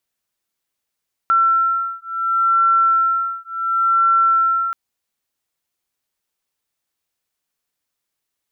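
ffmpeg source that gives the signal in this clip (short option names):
-f lavfi -i "aevalsrc='0.141*(sin(2*PI*1350*t)+sin(2*PI*1350.7*t))':d=3.43:s=44100"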